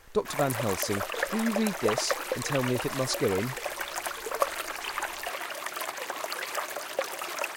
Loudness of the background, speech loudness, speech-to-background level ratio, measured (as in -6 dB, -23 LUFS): -32.5 LUFS, -31.0 LUFS, 1.5 dB